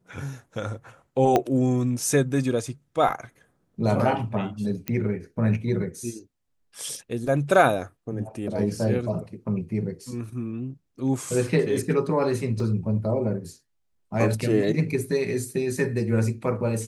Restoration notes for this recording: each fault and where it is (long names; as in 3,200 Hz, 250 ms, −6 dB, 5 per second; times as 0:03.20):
0:01.36: click −8 dBFS
0:04.88: click −12 dBFS
0:12.60: drop-out 2.6 ms